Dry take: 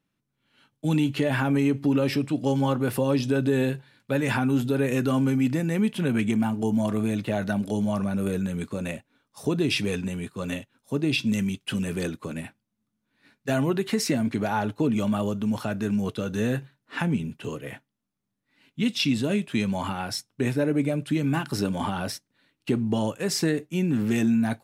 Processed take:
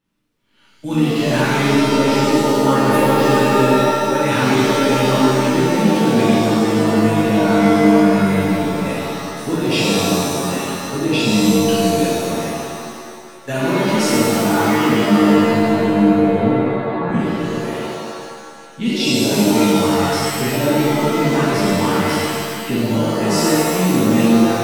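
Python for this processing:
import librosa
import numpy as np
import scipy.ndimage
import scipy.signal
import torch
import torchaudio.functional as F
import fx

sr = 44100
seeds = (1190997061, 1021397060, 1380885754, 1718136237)

y = fx.steep_lowpass(x, sr, hz=1200.0, slope=96, at=(15.36, 17.09))
y = fx.rev_shimmer(y, sr, seeds[0], rt60_s=1.8, semitones=7, shimmer_db=-2, drr_db=-8.0)
y = F.gain(torch.from_numpy(y), -1.0).numpy()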